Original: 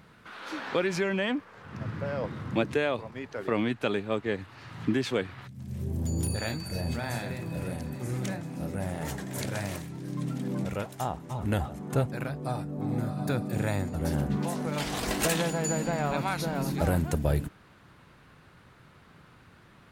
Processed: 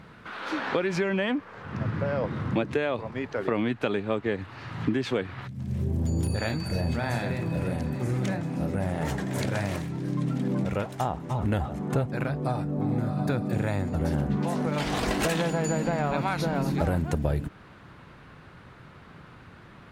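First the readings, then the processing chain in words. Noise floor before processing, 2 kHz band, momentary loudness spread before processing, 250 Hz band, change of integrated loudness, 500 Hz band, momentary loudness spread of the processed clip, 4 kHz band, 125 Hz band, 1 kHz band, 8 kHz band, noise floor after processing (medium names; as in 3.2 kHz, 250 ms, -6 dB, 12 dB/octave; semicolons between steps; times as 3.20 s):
-56 dBFS, +1.5 dB, 9 LU, +3.0 dB, +2.5 dB, +2.0 dB, 5 LU, 0.0 dB, +3.5 dB, +3.0 dB, -4.0 dB, -50 dBFS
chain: low-pass 3.3 kHz 6 dB/octave; compression 3:1, threshold -31 dBFS, peak gain reduction 8 dB; trim +7 dB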